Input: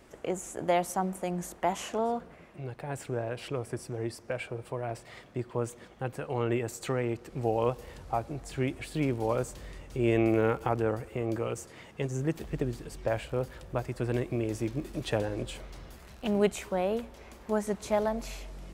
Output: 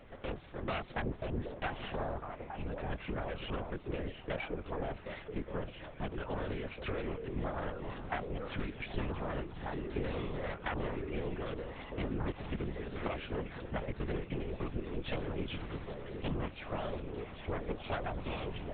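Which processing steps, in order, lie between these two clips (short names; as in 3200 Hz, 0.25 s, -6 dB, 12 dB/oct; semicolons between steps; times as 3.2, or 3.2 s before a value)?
self-modulated delay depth 0.41 ms; compressor, threshold -32 dBFS, peak gain reduction 12 dB; dynamic EQ 450 Hz, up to -5 dB, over -47 dBFS, Q 0.82; delay with a stepping band-pass 0.77 s, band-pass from 370 Hz, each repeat 1.4 oct, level -1 dB; LPC vocoder at 8 kHz whisper; gain +1.5 dB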